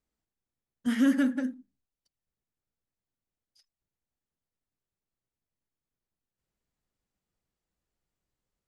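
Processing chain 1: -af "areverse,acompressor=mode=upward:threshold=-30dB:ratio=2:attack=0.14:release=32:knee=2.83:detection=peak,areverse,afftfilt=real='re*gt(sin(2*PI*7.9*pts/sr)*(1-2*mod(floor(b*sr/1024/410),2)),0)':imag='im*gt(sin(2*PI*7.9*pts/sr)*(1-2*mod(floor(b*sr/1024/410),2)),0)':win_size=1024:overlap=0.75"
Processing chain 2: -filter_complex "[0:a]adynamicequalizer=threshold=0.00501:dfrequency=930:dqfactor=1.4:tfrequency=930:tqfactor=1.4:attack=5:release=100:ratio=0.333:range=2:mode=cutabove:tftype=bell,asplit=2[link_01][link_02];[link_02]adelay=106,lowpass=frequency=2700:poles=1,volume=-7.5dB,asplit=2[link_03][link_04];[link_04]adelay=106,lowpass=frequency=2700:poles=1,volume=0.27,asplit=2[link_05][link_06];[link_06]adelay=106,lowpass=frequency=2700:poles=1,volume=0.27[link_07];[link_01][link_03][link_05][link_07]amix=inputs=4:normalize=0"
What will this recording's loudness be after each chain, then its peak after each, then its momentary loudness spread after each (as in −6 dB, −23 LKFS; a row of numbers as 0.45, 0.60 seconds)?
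−31.5, −27.5 LKFS; −15.5, −15.0 dBFS; 12, 11 LU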